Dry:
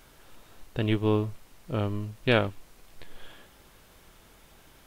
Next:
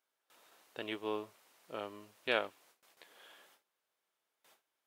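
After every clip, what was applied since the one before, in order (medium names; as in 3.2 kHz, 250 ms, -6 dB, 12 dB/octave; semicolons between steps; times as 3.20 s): gate with hold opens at -42 dBFS; high-pass 490 Hz 12 dB/octave; trim -7 dB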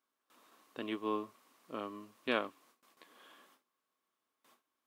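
small resonant body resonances 250/1100 Hz, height 13 dB, ringing for 30 ms; trim -3 dB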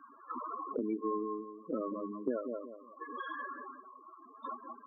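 filtered feedback delay 178 ms, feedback 18%, low-pass 3 kHz, level -8 dB; loudest bins only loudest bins 8; three bands compressed up and down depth 100%; trim +7 dB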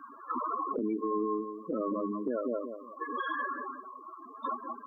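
peak limiter -31.5 dBFS, peak gain reduction 9 dB; trim +7.5 dB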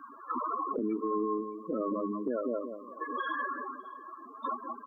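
delay 615 ms -22 dB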